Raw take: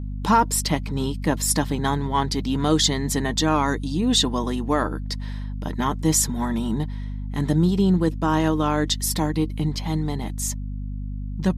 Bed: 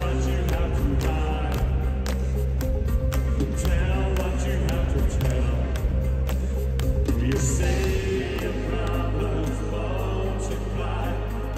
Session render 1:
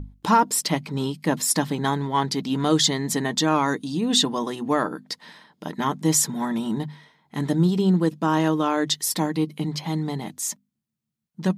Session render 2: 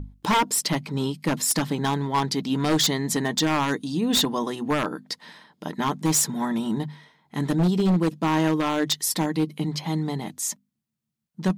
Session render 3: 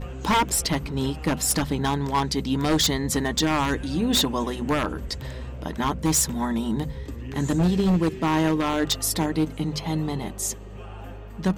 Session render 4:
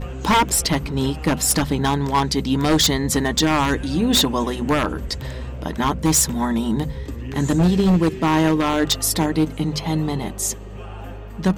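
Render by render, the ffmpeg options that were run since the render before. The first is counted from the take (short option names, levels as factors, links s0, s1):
-af "bandreject=f=50:t=h:w=6,bandreject=f=100:t=h:w=6,bandreject=f=150:t=h:w=6,bandreject=f=200:t=h:w=6,bandreject=f=250:t=h:w=6"
-af "aeval=exprs='0.188*(abs(mod(val(0)/0.188+3,4)-2)-1)':c=same"
-filter_complex "[1:a]volume=0.251[s0];[0:a][s0]amix=inputs=2:normalize=0"
-af "volume=1.68"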